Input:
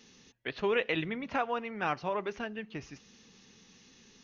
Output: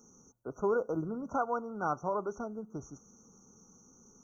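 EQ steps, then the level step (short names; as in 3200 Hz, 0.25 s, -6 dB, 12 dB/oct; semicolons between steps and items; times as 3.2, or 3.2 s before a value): brick-wall FIR band-stop 1500–5600 Hz; high shelf 5500 Hz +5.5 dB; 0.0 dB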